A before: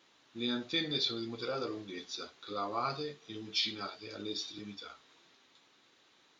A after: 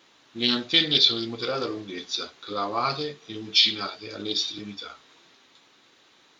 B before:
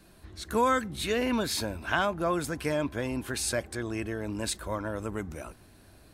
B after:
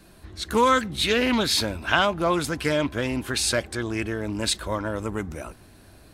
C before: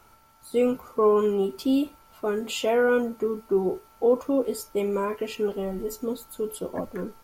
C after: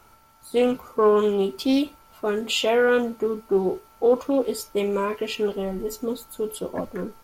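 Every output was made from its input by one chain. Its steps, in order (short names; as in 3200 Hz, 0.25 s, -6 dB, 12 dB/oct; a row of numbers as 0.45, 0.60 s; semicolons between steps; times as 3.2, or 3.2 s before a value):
dynamic EQ 3500 Hz, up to +7 dB, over -47 dBFS, Q 1; Doppler distortion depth 0.14 ms; match loudness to -24 LUFS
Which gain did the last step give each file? +8.0, +5.0, +2.0 dB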